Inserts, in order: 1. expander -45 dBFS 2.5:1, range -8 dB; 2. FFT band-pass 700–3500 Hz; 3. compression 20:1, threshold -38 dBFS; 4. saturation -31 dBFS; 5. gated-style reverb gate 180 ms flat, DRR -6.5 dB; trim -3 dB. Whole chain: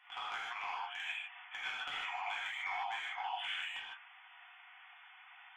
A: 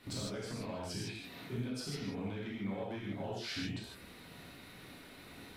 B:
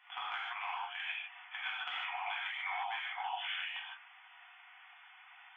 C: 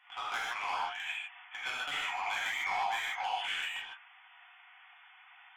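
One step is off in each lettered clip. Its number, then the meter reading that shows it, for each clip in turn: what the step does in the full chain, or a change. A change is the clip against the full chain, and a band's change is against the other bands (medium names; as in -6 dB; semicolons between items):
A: 2, 500 Hz band +19.0 dB; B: 4, distortion -18 dB; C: 3, mean gain reduction 4.0 dB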